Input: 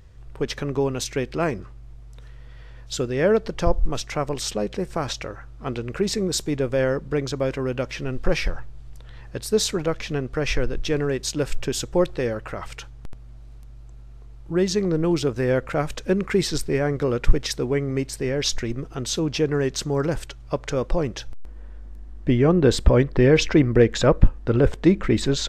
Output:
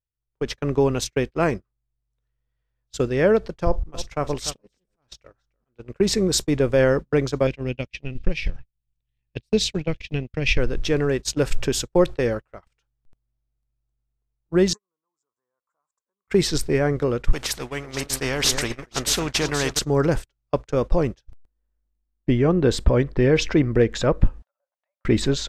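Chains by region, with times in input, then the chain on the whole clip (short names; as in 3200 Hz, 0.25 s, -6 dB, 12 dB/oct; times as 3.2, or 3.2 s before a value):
3.64–5.94 auto swell 0.197 s + tapped delay 41/296 ms -19/-13 dB
7.47–10.58 EQ curve 190 Hz 0 dB, 390 Hz -7 dB, 1400 Hz -15 dB, 2500 Hz +5 dB, 12000 Hz -13 dB + transient shaper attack +4 dB, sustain -6 dB
14.73–16.28 compressor 5:1, threshold -23 dBFS + double band-pass 2800 Hz, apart 2.8 oct
17.33–19.79 echo with dull and thin repeats by turns 0.24 s, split 1700 Hz, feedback 60%, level -11.5 dB + spectral compressor 2:1
24.42–25.05 treble ducked by the level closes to 1000 Hz, closed at -16 dBFS + brick-wall FIR high-pass 530 Hz + compressor 2:1, threshold -43 dBFS
whole clip: gate -27 dBFS, range -40 dB; AGC gain up to 10 dB; gain -5 dB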